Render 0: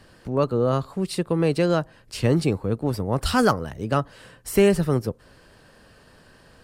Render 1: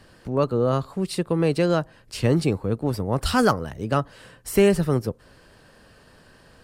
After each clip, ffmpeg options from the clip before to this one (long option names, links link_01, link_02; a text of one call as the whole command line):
ffmpeg -i in.wav -af anull out.wav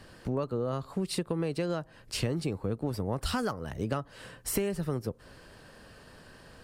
ffmpeg -i in.wav -af "acompressor=threshold=-27dB:ratio=12" out.wav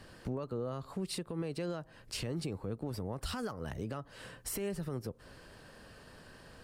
ffmpeg -i in.wav -af "alimiter=level_in=2.5dB:limit=-24dB:level=0:latency=1:release=116,volume=-2.5dB,volume=-2dB" out.wav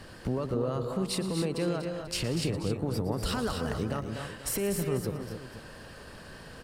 ffmpeg -i in.wav -af "aecho=1:1:115|185|242|269|490:0.2|0.158|0.398|0.355|0.178,volume=6.5dB" out.wav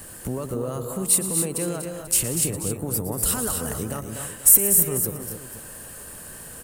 ffmpeg -i in.wav -af "aexciter=amount=4.9:drive=10:freq=7000,volume=1.5dB" out.wav